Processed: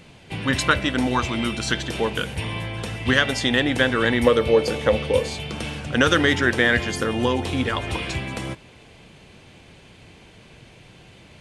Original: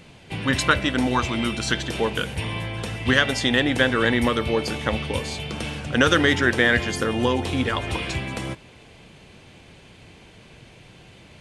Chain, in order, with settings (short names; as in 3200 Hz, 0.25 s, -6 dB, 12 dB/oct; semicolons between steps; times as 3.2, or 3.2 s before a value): 4.25–5.28 bell 500 Hz +14 dB 0.31 oct